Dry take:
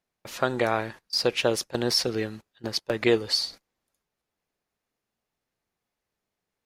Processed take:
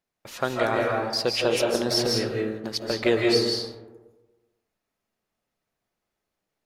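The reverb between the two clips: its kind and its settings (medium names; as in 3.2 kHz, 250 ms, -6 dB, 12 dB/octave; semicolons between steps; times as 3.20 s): algorithmic reverb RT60 1.2 s, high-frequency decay 0.35×, pre-delay 120 ms, DRR -1 dB; trim -1.5 dB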